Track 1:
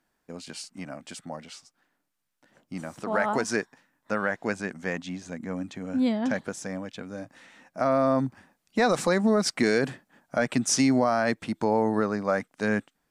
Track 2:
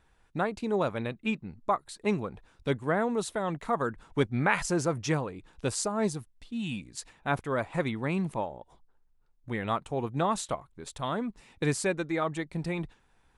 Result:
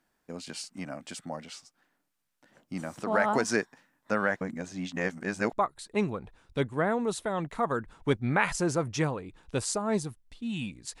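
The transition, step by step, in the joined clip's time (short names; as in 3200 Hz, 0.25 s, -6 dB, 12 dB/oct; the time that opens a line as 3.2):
track 1
4.41–5.53 reverse
5.53 switch to track 2 from 1.63 s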